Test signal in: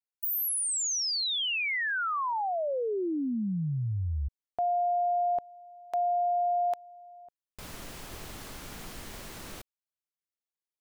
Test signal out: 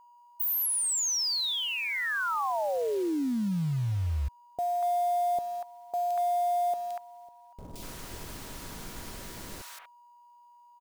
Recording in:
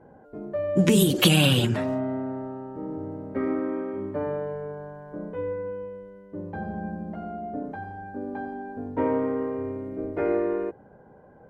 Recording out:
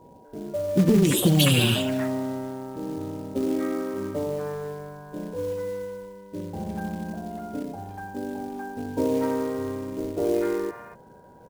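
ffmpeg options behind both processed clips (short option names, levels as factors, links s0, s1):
-filter_complex "[0:a]acrossover=split=840|2600[s0][s1][s2];[s2]adelay=170[s3];[s1]adelay=240[s4];[s0][s4][s3]amix=inputs=3:normalize=0,acontrast=69,aeval=exprs='val(0)+0.00355*sin(2*PI*960*n/s)':c=same,acrusher=bits=5:mode=log:mix=0:aa=0.000001,volume=0.562"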